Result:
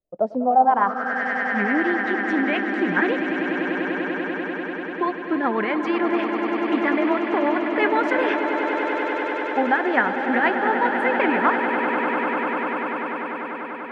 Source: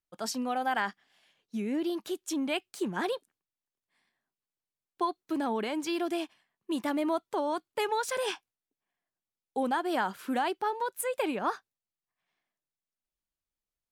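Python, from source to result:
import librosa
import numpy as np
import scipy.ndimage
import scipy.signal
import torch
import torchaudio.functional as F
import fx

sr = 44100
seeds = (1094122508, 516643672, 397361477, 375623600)

y = fx.rotary(x, sr, hz=8.0)
y = fx.echo_swell(y, sr, ms=98, loudest=8, wet_db=-10.5)
y = fx.filter_sweep_lowpass(y, sr, from_hz=600.0, to_hz=1900.0, start_s=0.38, end_s=1.24, q=4.3)
y = y * librosa.db_to_amplitude(8.5)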